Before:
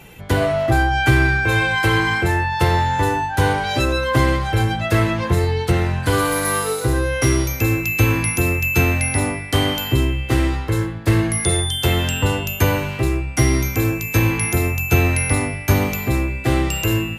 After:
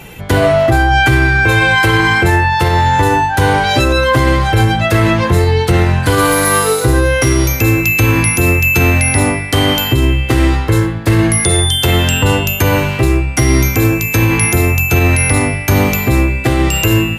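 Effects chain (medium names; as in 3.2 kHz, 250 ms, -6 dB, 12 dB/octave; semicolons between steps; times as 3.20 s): 6.91–7.31 s: crackle 200 per s -35 dBFS; loudness maximiser +10 dB; trim -1 dB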